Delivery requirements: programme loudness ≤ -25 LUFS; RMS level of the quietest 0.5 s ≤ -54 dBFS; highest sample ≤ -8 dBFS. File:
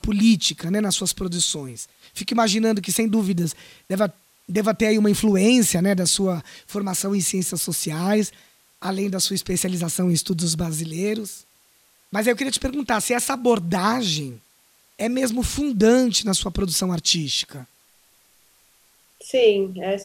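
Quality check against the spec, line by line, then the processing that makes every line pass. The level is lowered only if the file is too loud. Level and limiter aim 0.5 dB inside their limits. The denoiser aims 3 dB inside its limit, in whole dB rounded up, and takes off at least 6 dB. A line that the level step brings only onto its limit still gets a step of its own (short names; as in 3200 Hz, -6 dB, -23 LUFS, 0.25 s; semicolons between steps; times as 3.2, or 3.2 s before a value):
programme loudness -21.5 LUFS: fail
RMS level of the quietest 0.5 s -59 dBFS: OK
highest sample -5.5 dBFS: fail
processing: gain -4 dB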